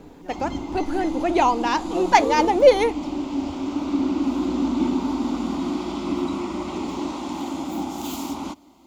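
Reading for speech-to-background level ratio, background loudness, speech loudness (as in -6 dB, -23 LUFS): 7.0 dB, -27.5 LUFS, -20.5 LUFS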